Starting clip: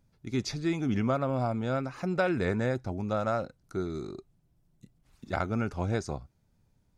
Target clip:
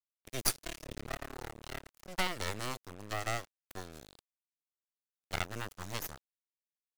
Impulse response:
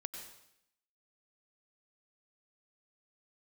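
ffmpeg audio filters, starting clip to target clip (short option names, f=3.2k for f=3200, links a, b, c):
-filter_complex "[0:a]asplit=3[a][b][c];[a]afade=t=out:st=0.54:d=0.02[d];[b]tremolo=f=36:d=0.947,afade=t=in:st=0.54:d=0.02,afade=t=out:st=2.07:d=0.02[e];[c]afade=t=in:st=2.07:d=0.02[f];[d][e][f]amix=inputs=3:normalize=0,acrossover=split=220[g][h];[h]crystalizer=i=5:c=0[i];[g][i]amix=inputs=2:normalize=0,highpass=69,lowshelf=f=400:g=-3.5,asplit=2[j][k];[k]aecho=0:1:323|646:0.0631|0.0202[l];[j][l]amix=inputs=2:normalize=0,aeval=exprs='0.335*(cos(1*acos(clip(val(0)/0.335,-1,1)))-cos(1*PI/2))+0.0944*(cos(3*acos(clip(val(0)/0.335,-1,1)))-cos(3*PI/2))+0.0596*(cos(6*acos(clip(val(0)/0.335,-1,1)))-cos(6*PI/2))':c=same,acrusher=bits=6:mix=0:aa=0.5,highshelf=f=8k:g=5.5,volume=-3.5dB"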